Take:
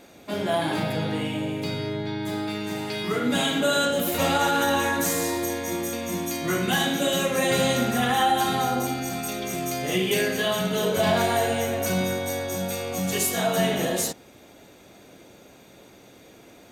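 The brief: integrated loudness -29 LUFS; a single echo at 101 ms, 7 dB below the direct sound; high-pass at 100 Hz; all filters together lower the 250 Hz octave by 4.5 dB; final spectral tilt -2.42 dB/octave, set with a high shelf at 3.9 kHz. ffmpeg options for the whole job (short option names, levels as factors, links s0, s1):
-af "highpass=100,equalizer=f=250:t=o:g=-6,highshelf=f=3900:g=7.5,aecho=1:1:101:0.447,volume=0.473"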